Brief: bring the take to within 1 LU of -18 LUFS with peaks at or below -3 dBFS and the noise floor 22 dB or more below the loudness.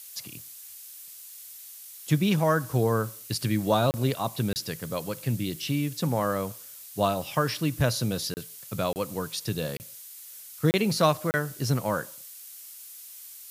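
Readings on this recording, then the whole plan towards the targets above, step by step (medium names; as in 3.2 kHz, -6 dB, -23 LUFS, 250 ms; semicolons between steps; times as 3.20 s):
dropouts 7; longest dropout 29 ms; noise floor -45 dBFS; noise floor target -50 dBFS; loudness -27.5 LUFS; peak level -8.0 dBFS; loudness target -18.0 LUFS
-> interpolate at 3.91/4.53/8.34/8.93/9.77/10.71/11.31 s, 29 ms; noise print and reduce 6 dB; trim +9.5 dB; peak limiter -3 dBFS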